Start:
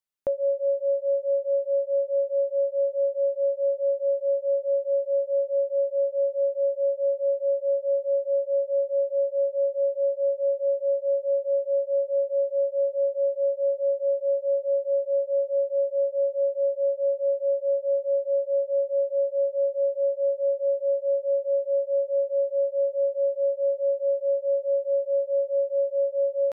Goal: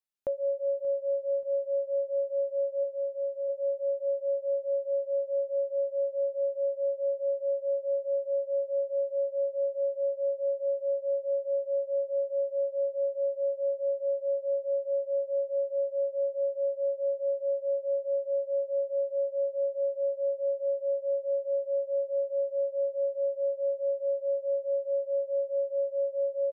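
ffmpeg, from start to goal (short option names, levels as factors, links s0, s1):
-filter_complex "[0:a]asplit=3[s0][s1][s2];[s0]afade=t=out:st=2.83:d=0.02[s3];[s1]highpass=f=640:p=1,afade=t=in:st=2.83:d=0.02,afade=t=out:st=3.48:d=0.02[s4];[s2]afade=t=in:st=3.48:d=0.02[s5];[s3][s4][s5]amix=inputs=3:normalize=0,aecho=1:1:581|1162|1743:0.126|0.0441|0.0154,volume=0.562"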